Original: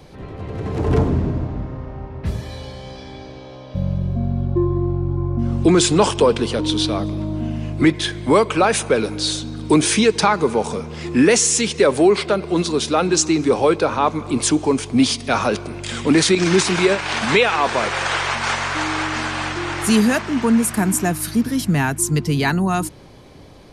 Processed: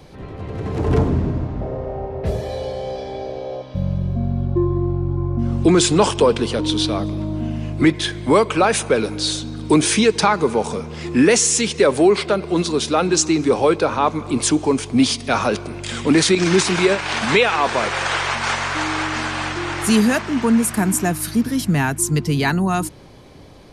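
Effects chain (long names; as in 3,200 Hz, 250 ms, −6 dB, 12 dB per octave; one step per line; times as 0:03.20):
0:01.61–0:03.62: flat-topped bell 550 Hz +12.5 dB 1.2 octaves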